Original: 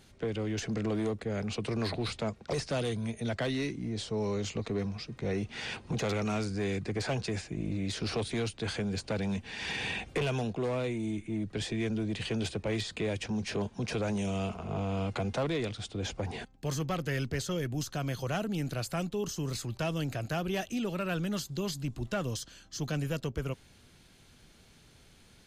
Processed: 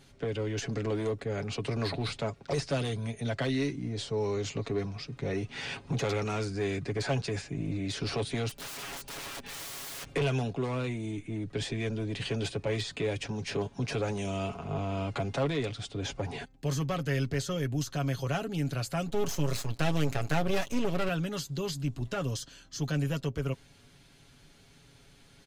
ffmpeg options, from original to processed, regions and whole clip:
-filter_complex "[0:a]asettb=1/sr,asplit=3[a][b][c];[a]atrim=end=8.494[d];[b]atrim=start=8.49:end=10.06,asetpts=PTS-STARTPTS,afade=t=in:d=0.004:c=qsin,afade=t=out:st=1.566:d=0.004:c=qsin,equalizer=f=90:w=5.1:g=4,aecho=1:1:5:0.7,atrim=end_sample=69237,aeval=exprs='(mod(63.1*val(0)+1,2)-1)/63.1':c=same[e];[c]atrim=start=10.056[f];[d][e]acrossfade=d=0.004:c1=hsin:c2=qsin[g];[g][f]acrossfade=d=0.004:c1=qsin:c2=hsin,asettb=1/sr,asplit=3[h][i][j];[h]atrim=end=19.084[k];[i]atrim=start=19.08:end=21.09,asetpts=PTS-STARTPTS,afade=t=in:d=0.004:c=qsin,afade=t=out:st=2.006:d=0.004:c=qsin,acontrast=62,aeval=exprs='max(val(0),0)':c=same[l];[j]atrim=start=21.086[m];[k][l]acrossfade=d=0.004:c1=hsin:c2=qsin[n];[n][m]acrossfade=d=0.004:c1=qsin:c2=hsin,highshelf=f=9.6k:g=-3.5,aecho=1:1:7.2:0.53"

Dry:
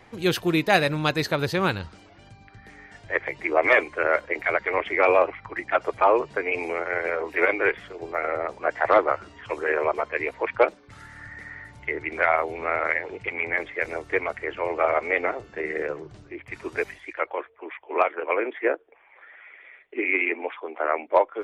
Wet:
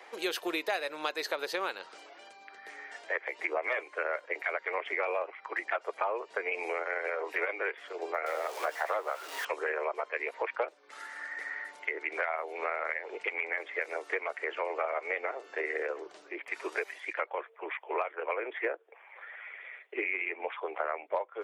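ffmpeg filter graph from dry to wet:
-filter_complex "[0:a]asettb=1/sr,asplit=3[a][b][c];[a]atrim=end=8.264[d];[b]atrim=start=8.26:end=9.45,asetpts=PTS-STARTPTS,afade=t=in:d=0.004:c=qsin,afade=t=out:st=1.186:d=0.004:c=qsin,aeval=exprs='val(0)+0.5*0.0224*sgn(val(0))':c=same,highpass=330,asplit=2[e][f];[f]adelay=13,volume=-12.5dB[g];[e][g]amix=inputs=2:normalize=0,atrim=end_sample=52479[h];[c]atrim=start=9.446[i];[d][h]acrossfade=d=0.004:c1=hsin:c2=qsin[j];[j][i]acrossfade=d=0.004:c1=qsin:c2=hsin,highpass=f=420:w=0.5412,highpass=f=420:w=1.3066,acompressor=threshold=-32dB:ratio=6,volume=2dB"

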